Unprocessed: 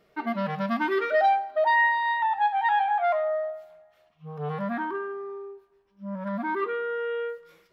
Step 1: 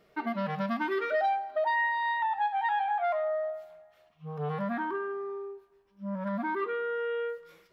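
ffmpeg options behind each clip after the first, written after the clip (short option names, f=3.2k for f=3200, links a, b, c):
-af "acompressor=threshold=-30dB:ratio=2"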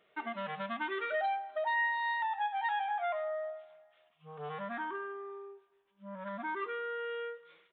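-af "aemphasis=mode=production:type=riaa,aresample=8000,aresample=44100,volume=-4.5dB"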